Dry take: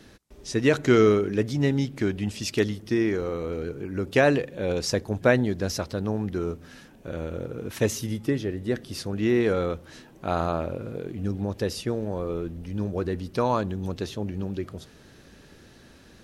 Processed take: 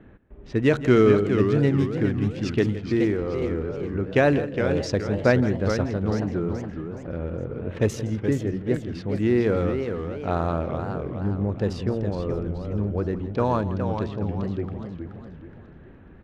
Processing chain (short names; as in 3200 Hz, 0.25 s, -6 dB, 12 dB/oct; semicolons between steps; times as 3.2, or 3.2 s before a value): Wiener smoothing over 9 samples; high shelf 5300 Hz -8 dB; echo 0.165 s -15 dB; low-pass opened by the level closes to 2300 Hz, open at -20.5 dBFS; low shelf 170 Hz +5.5 dB; warbling echo 0.42 s, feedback 41%, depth 206 cents, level -7 dB